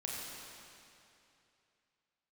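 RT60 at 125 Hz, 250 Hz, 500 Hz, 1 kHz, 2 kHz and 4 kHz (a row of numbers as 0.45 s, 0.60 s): 2.9 s, 2.7 s, 2.8 s, 2.7 s, 2.7 s, 2.5 s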